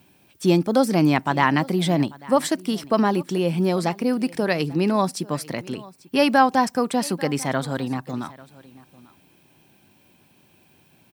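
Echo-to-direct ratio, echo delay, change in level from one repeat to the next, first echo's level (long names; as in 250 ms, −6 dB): −21.5 dB, 843 ms, repeats not evenly spaced, −21.5 dB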